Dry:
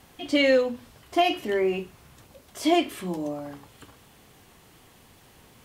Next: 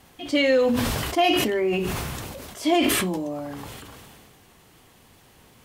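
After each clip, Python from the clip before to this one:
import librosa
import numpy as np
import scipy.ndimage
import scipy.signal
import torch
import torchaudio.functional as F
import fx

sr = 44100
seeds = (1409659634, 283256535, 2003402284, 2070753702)

y = fx.sustainer(x, sr, db_per_s=23.0)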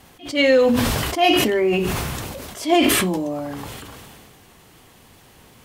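y = fx.attack_slew(x, sr, db_per_s=190.0)
y = y * librosa.db_to_amplitude(4.5)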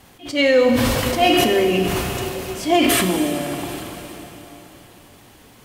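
y = fx.rev_plate(x, sr, seeds[0], rt60_s=3.9, hf_ratio=0.95, predelay_ms=0, drr_db=5.0)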